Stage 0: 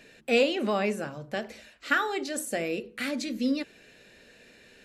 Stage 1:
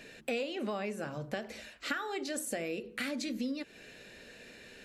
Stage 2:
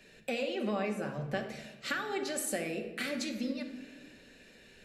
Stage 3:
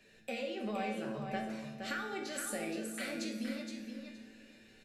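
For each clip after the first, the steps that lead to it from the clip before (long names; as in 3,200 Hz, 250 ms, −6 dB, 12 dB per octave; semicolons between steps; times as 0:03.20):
downward compressor 6 to 1, threshold −36 dBFS, peak gain reduction 16 dB; level +2.5 dB
rectangular room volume 1,900 cubic metres, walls mixed, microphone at 1.1 metres; multiband upward and downward expander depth 40%
tuned comb filter 110 Hz, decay 0.59 s, harmonics all, mix 80%; repeating echo 469 ms, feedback 17%, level −6.5 dB; level +5 dB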